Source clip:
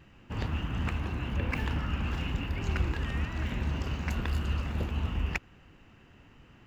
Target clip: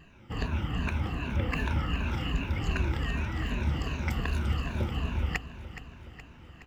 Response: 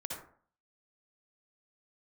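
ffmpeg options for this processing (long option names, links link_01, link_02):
-af "afftfilt=real='re*pow(10,12/40*sin(2*PI*(1.5*log(max(b,1)*sr/1024/100)/log(2)-(-2.6)*(pts-256)/sr)))':imag='im*pow(10,12/40*sin(2*PI*(1.5*log(max(b,1)*sr/1024/100)/log(2)-(-2.6)*(pts-256)/sr)))':win_size=1024:overlap=0.75,aecho=1:1:420|840|1260|1680|2100|2520:0.224|0.132|0.0779|0.046|0.0271|0.016"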